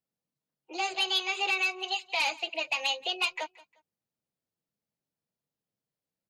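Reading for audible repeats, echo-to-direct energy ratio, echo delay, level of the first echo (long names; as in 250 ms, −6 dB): 2, −21.5 dB, 177 ms, −22.0 dB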